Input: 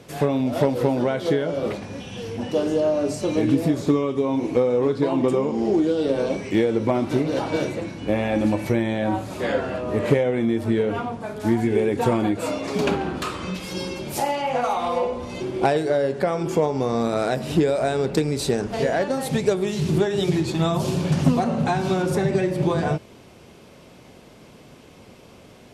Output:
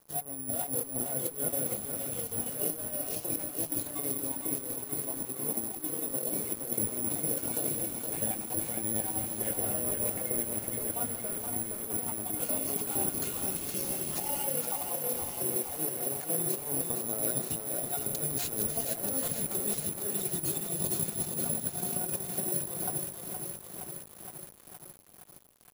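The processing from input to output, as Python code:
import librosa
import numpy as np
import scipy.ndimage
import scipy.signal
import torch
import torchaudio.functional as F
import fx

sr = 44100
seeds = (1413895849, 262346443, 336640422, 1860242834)

y = fx.spec_dropout(x, sr, seeds[0], share_pct=23)
y = fx.low_shelf(y, sr, hz=460.0, db=4.0)
y = fx.hum_notches(y, sr, base_hz=60, count=6)
y = fx.comb_fb(y, sr, f0_hz=710.0, decay_s=0.2, harmonics='all', damping=0.0, mix_pct=80)
y = fx.echo_wet_highpass(y, sr, ms=151, feedback_pct=76, hz=1400.0, wet_db=-10.5)
y = fx.over_compress(y, sr, threshold_db=-36.0, ratio=-0.5)
y = fx.peak_eq(y, sr, hz=1700.0, db=-6.5, octaves=1.1)
y = np.sign(y) * np.maximum(np.abs(y) - 10.0 ** (-51.0 / 20.0), 0.0)
y = (np.kron(y[::4], np.eye(4)[0]) * 4)[:len(y)]
y = fx.echo_crushed(y, sr, ms=467, feedback_pct=80, bits=7, wet_db=-5.5)
y = F.gain(torch.from_numpy(y), -1.5).numpy()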